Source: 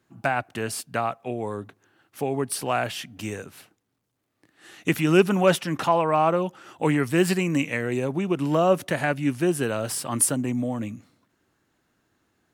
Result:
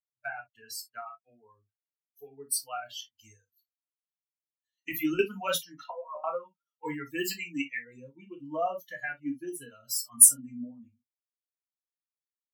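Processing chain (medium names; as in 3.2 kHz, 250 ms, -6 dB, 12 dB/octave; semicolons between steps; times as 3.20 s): expander on every frequency bin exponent 3; high-pass 99 Hz; RIAA curve recording; 3.15–5.19 s: compressor with a negative ratio -28 dBFS, ratio -0.5; 5.83–6.24 s: auto-wah 530–3300 Hz, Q 13, down, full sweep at -22 dBFS; reverberation, pre-delay 3 ms, DRR -1 dB; trim -6 dB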